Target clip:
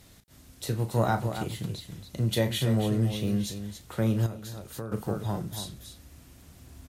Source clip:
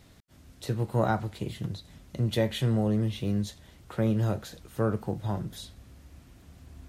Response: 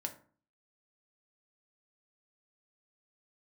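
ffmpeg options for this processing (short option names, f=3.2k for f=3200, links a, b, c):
-filter_complex "[0:a]aemphasis=mode=production:type=cd,aecho=1:1:34.99|279.9:0.316|0.355,asettb=1/sr,asplit=3[a][b][c];[a]atrim=end=4.264[d];[b]atrim=start=4.26:end=4.92,asetpts=PTS-STARTPTS,afade=t=in:d=0.004:c=qsin,afade=t=out:st=0.656:d=0.004:c=qsin,acompressor=threshold=-36dB:ratio=4[e];[c]atrim=start=4.916[f];[d][e]acrossfade=d=0.004:c1=hsin:c2=qsin[g];[g][f]acrossfade=d=0.004:c1=qsin:c2=hsin"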